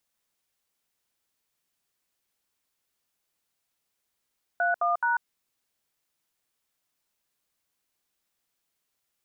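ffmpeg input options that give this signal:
-f lavfi -i "aevalsrc='0.0596*clip(min(mod(t,0.213),0.143-mod(t,0.213))/0.002,0,1)*(eq(floor(t/0.213),0)*(sin(2*PI*697*mod(t,0.213))+sin(2*PI*1477*mod(t,0.213)))+eq(floor(t/0.213),1)*(sin(2*PI*697*mod(t,0.213))+sin(2*PI*1209*mod(t,0.213)))+eq(floor(t/0.213),2)*(sin(2*PI*941*mod(t,0.213))+sin(2*PI*1477*mod(t,0.213))))':d=0.639:s=44100"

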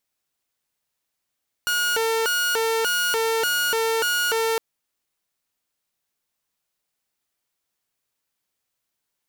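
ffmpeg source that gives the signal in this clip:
-f lavfi -i "aevalsrc='0.133*(2*mod((945.5*t+494.5/1.7*(0.5-abs(mod(1.7*t,1)-0.5))),1)-1)':d=2.91:s=44100"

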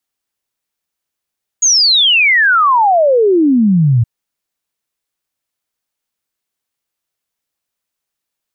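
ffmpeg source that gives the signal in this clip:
-f lavfi -i "aevalsrc='0.447*clip(min(t,2.42-t)/0.01,0,1)*sin(2*PI*6800*2.42/log(110/6800)*(exp(log(110/6800)*t/2.42)-1))':d=2.42:s=44100"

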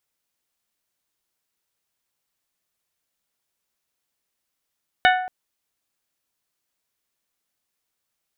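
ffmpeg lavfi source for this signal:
-f lavfi -i "aevalsrc='0.224*pow(10,-3*t/0.79)*sin(2*PI*739*t)+0.178*pow(10,-3*t/0.486)*sin(2*PI*1478*t)+0.141*pow(10,-3*t/0.428)*sin(2*PI*1773.6*t)+0.112*pow(10,-3*t/0.366)*sin(2*PI*2217*t)+0.0891*pow(10,-3*t/0.299)*sin(2*PI*2956*t)+0.0708*pow(10,-3*t/0.256)*sin(2*PI*3695*t)':d=0.23:s=44100"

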